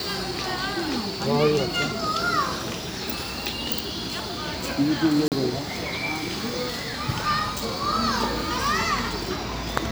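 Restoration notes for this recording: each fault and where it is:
0:05.28–0:05.32: drop-out 38 ms

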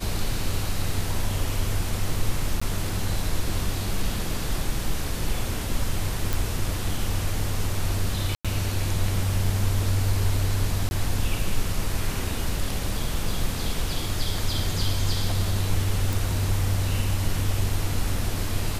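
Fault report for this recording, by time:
0:02.60–0:02.62: drop-out 15 ms
0:06.33: click
0:08.35–0:08.45: drop-out 96 ms
0:10.89–0:10.91: drop-out 20 ms
0:16.13: click

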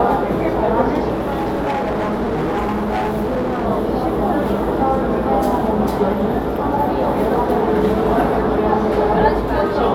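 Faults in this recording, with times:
0:01.13–0:03.67: clipping −16.5 dBFS

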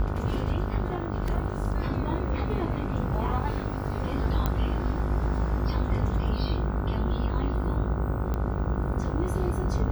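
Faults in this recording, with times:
mains buzz 50 Hz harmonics 30 −32 dBFS
0:01.28: drop-out 2.9 ms
0:04.46: click −13 dBFS
0:08.34: click −18 dBFS

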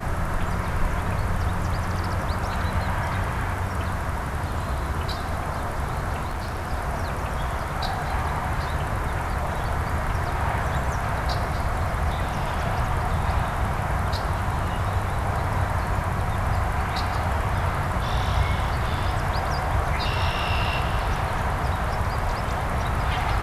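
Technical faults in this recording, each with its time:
0:06.26–0:06.69: clipping −25 dBFS

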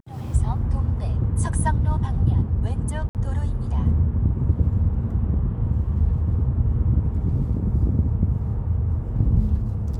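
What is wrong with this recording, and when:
0:03.09–0:03.15: drop-out 58 ms

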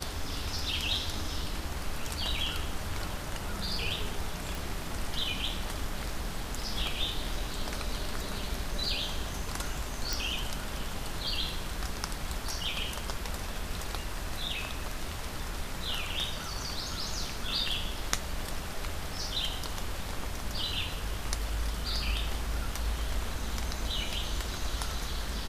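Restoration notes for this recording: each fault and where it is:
0:04.55: click
0:10.13: click

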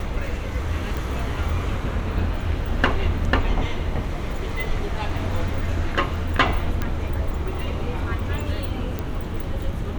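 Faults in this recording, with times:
0:00.97: click
0:06.82: click −12 dBFS
0:08.99: click −14 dBFS

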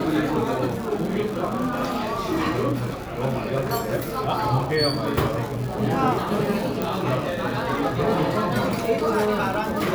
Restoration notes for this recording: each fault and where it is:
surface crackle 170 per second −28 dBFS
0:06.82: click

